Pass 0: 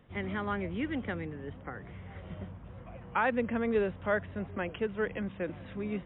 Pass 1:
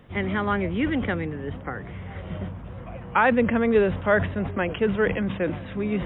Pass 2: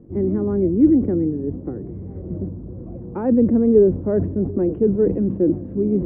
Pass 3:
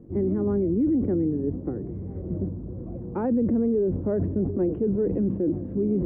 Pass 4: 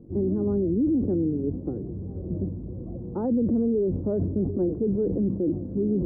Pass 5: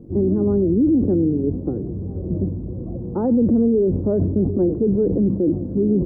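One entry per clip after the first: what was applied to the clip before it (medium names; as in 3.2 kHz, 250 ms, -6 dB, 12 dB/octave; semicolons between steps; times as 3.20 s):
decay stretcher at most 85 dB/s; trim +9 dB
resonant low-pass 340 Hz, resonance Q 3.6; trim +2.5 dB
peak limiter -15.5 dBFS, peak gain reduction 11 dB; trim -1.5 dB
Gaussian low-pass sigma 7.8 samples
feedback delay 96 ms, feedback 43%, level -22.5 dB; trim +6.5 dB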